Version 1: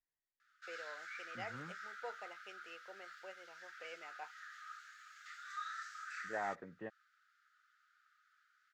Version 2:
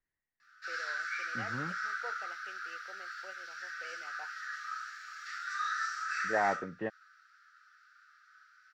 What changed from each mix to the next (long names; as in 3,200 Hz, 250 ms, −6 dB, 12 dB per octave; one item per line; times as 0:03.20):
second voice +10.5 dB
reverb: on, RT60 0.45 s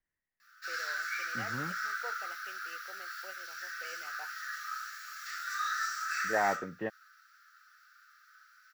master: remove high-frequency loss of the air 94 metres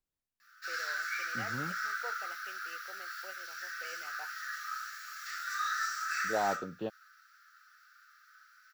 second voice: remove low-pass with resonance 1,900 Hz, resonance Q 12